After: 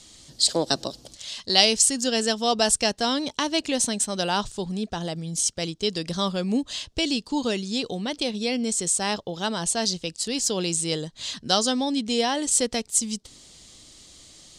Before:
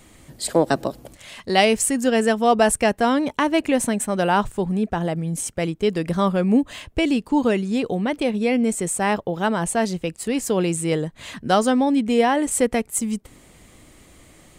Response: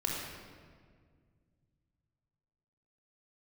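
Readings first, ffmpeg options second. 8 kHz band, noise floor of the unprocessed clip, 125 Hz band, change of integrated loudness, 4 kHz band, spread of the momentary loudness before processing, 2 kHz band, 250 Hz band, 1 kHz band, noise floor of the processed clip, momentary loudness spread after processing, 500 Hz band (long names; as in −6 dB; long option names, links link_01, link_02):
+3.5 dB, −51 dBFS, −7.0 dB, −3.0 dB, +7.0 dB, 8 LU, −5.5 dB, −7.0 dB, −7.0 dB, −54 dBFS, 9 LU, −7.0 dB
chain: -af "lowpass=frequency=5100:width_type=q:width=1.8,aexciter=amount=7.2:drive=1.1:freq=3200,volume=-7dB"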